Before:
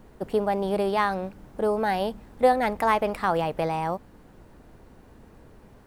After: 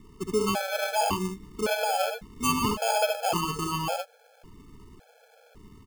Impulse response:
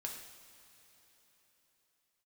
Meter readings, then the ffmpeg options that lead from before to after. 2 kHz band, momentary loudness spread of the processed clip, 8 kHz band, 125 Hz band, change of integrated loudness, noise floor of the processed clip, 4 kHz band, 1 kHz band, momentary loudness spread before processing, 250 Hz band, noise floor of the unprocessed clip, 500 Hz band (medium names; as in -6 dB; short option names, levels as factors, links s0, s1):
-0.5 dB, 6 LU, +16.0 dB, 0.0 dB, -2.0 dB, -59 dBFS, +7.5 dB, -3.0 dB, 9 LU, -1.5 dB, -52 dBFS, -4.0 dB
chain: -af "aecho=1:1:65|76:0.473|0.473,acrusher=samples=23:mix=1:aa=0.000001,afftfilt=real='re*gt(sin(2*PI*0.9*pts/sr)*(1-2*mod(floor(b*sr/1024/440),2)),0)':imag='im*gt(sin(2*PI*0.9*pts/sr)*(1-2*mod(floor(b*sr/1024/440),2)),0)':win_size=1024:overlap=0.75"